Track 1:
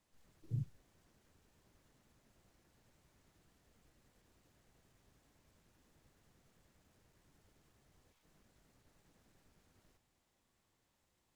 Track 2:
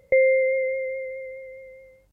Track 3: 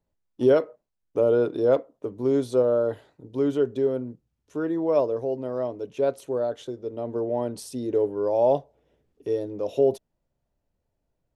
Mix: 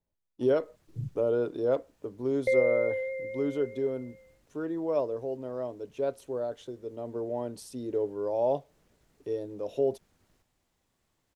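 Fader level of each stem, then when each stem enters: +2.5, −7.5, −6.5 decibels; 0.45, 2.35, 0.00 seconds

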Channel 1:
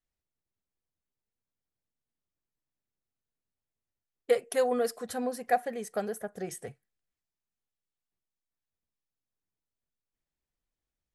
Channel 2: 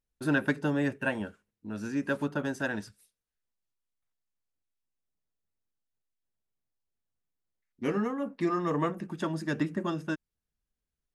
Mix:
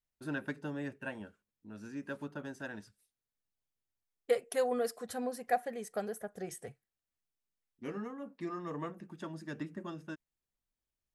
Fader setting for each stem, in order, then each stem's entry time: −4.5, −11.0 decibels; 0.00, 0.00 seconds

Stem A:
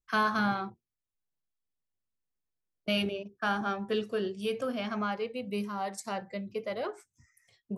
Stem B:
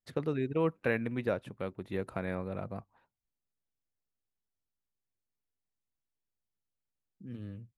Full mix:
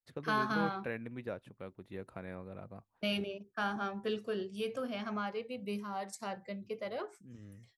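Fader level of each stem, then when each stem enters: −5.0, −9.0 decibels; 0.15, 0.00 seconds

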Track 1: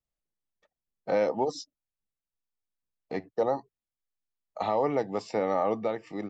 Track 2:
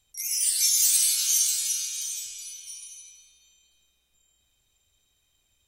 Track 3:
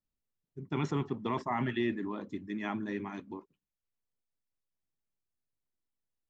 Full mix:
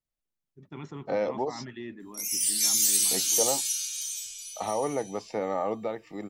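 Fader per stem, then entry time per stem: −2.5, −2.0, −8.5 decibels; 0.00, 2.00, 0.00 seconds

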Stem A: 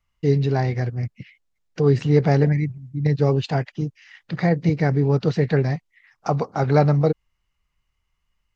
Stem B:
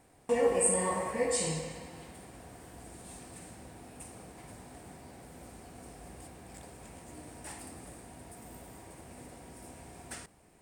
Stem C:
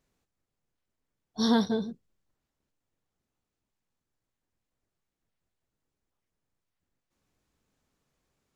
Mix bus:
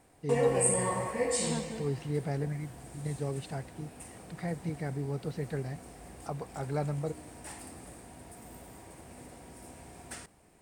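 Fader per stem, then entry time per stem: −16.0, 0.0, −13.5 decibels; 0.00, 0.00, 0.00 seconds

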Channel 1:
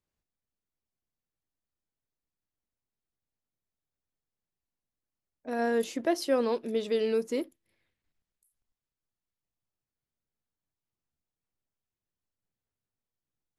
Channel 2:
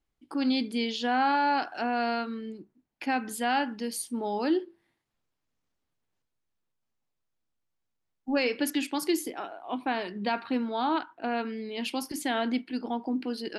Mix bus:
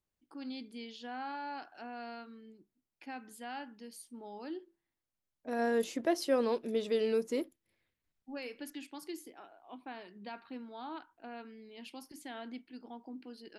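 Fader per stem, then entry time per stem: −3.0, −16.0 decibels; 0.00, 0.00 seconds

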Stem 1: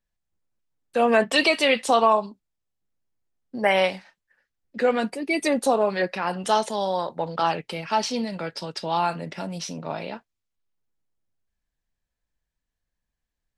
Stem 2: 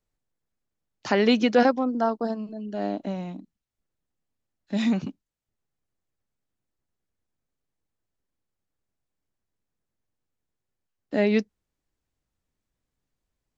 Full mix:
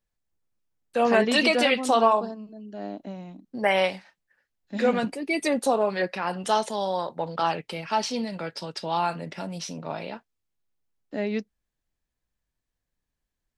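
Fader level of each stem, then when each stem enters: −2.0, −6.5 decibels; 0.00, 0.00 seconds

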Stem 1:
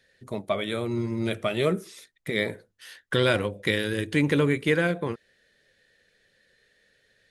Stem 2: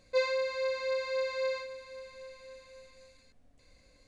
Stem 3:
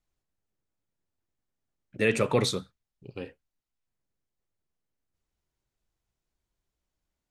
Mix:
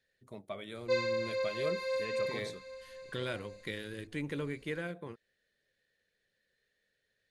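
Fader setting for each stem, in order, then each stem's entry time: −15.0, −2.0, −19.0 decibels; 0.00, 0.75, 0.00 seconds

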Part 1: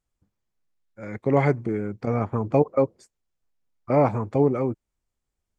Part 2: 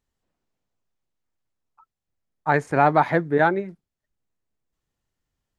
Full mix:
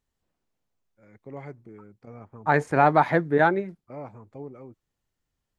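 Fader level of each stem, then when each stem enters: −19.5, −1.0 decibels; 0.00, 0.00 seconds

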